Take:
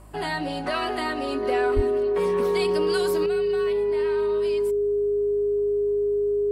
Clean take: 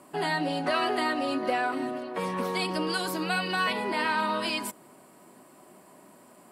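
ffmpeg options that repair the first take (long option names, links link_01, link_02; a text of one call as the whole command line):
ffmpeg -i in.wav -filter_complex "[0:a]bandreject=frequency=51.8:width_type=h:width=4,bandreject=frequency=103.6:width_type=h:width=4,bandreject=frequency=155.4:width_type=h:width=4,bandreject=frequency=207.2:width_type=h:width=4,bandreject=frequency=259:width_type=h:width=4,bandreject=frequency=410:width=30,asplit=3[link_01][link_02][link_03];[link_01]afade=type=out:start_time=1.75:duration=0.02[link_04];[link_02]highpass=frequency=140:width=0.5412,highpass=frequency=140:width=1.3066,afade=type=in:start_time=1.75:duration=0.02,afade=type=out:start_time=1.87:duration=0.02[link_05];[link_03]afade=type=in:start_time=1.87:duration=0.02[link_06];[link_04][link_05][link_06]amix=inputs=3:normalize=0,asetnsamples=nb_out_samples=441:pad=0,asendcmd='3.26 volume volume 10.5dB',volume=0dB" out.wav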